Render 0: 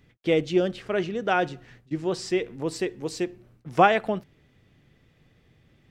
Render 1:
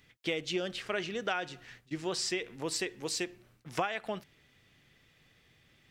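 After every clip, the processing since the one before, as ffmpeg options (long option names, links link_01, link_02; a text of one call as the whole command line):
ffmpeg -i in.wav -af "tiltshelf=frequency=970:gain=-7,acompressor=threshold=-27dB:ratio=8,volume=-2dB" out.wav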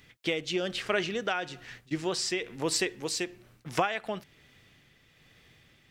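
ffmpeg -i in.wav -af "tremolo=f=1.1:d=0.36,volume=6dB" out.wav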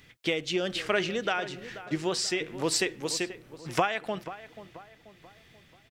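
ffmpeg -i in.wav -filter_complex "[0:a]asplit=2[link_01][link_02];[link_02]adelay=485,lowpass=frequency=1900:poles=1,volume=-13.5dB,asplit=2[link_03][link_04];[link_04]adelay=485,lowpass=frequency=1900:poles=1,volume=0.46,asplit=2[link_05][link_06];[link_06]adelay=485,lowpass=frequency=1900:poles=1,volume=0.46,asplit=2[link_07][link_08];[link_08]adelay=485,lowpass=frequency=1900:poles=1,volume=0.46[link_09];[link_01][link_03][link_05][link_07][link_09]amix=inputs=5:normalize=0,volume=1.5dB" out.wav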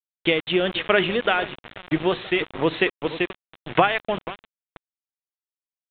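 ffmpeg -i in.wav -af "bandreject=frequency=72.75:width_type=h:width=4,bandreject=frequency=145.5:width_type=h:width=4,bandreject=frequency=218.25:width_type=h:width=4,bandreject=frequency=291:width_type=h:width=4,aeval=exprs='val(0)*gte(abs(val(0)),0.0188)':channel_layout=same,aresample=8000,aresample=44100,volume=8dB" out.wav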